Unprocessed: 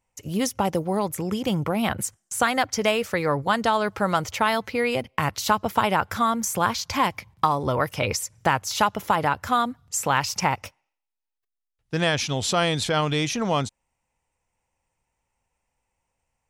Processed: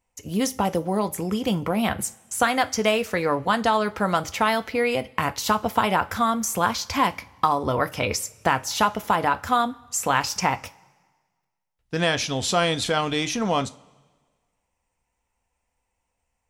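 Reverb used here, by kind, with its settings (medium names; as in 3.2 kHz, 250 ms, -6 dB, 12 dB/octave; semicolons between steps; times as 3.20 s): two-slope reverb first 0.24 s, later 1.5 s, from -21 dB, DRR 9.5 dB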